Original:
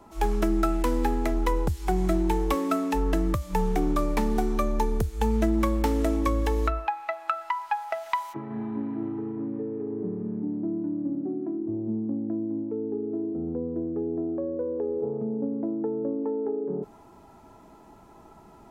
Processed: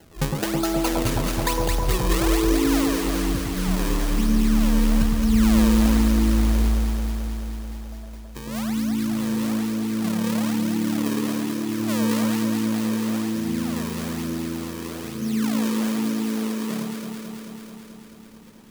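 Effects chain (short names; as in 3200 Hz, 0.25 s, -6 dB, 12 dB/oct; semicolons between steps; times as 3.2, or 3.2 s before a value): low-pass sweep 920 Hz -> 220 Hz, 1.56–2.93; decimation with a swept rate 36×, swing 160% 1.1 Hz; high shelf 4100 Hz +7.5 dB; on a send: echo with dull and thin repeats by turns 0.109 s, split 1200 Hz, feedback 86%, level -2 dB; on the sum: gain -4 dB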